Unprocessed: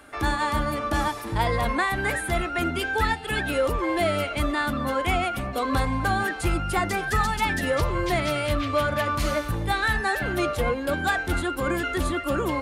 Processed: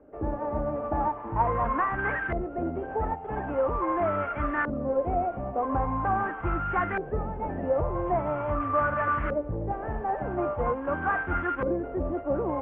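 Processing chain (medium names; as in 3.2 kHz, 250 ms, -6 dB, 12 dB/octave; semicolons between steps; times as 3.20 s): CVSD coder 16 kbps; LFO low-pass saw up 0.43 Hz 490–1600 Hz; trim -4.5 dB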